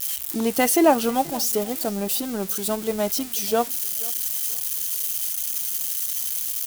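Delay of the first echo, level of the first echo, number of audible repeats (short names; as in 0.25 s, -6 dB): 0.483 s, -22.5 dB, 2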